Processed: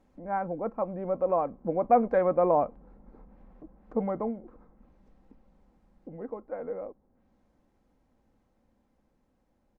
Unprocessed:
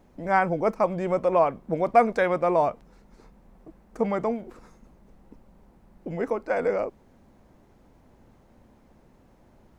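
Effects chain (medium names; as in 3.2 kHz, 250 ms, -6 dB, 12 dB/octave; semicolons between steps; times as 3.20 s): Doppler pass-by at 2.83 s, 9 m/s, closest 9.7 m; low-pass that closes with the level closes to 1 kHz, closed at -47.5 dBFS; comb 3.8 ms, depth 33%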